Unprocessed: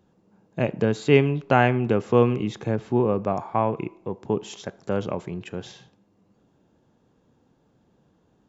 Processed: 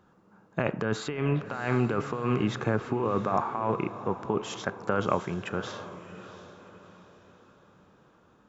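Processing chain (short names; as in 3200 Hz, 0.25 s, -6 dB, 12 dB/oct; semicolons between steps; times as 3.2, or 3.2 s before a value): bell 1300 Hz +13.5 dB 0.94 oct; negative-ratio compressor -23 dBFS, ratio -1; diffused feedback echo 0.696 s, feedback 41%, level -13 dB; gain -4.5 dB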